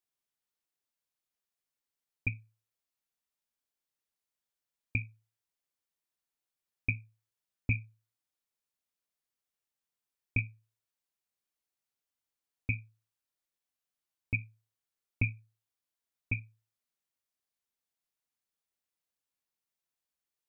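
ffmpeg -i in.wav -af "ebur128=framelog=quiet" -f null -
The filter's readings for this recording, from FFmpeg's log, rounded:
Integrated loudness:
  I:         -36.7 LUFS
  Threshold: -47.8 LUFS
Loudness range:
  LRA:         6.2 LU
  Threshold: -62.9 LUFS
  LRA low:   -46.5 LUFS
  LRA high:  -40.3 LUFS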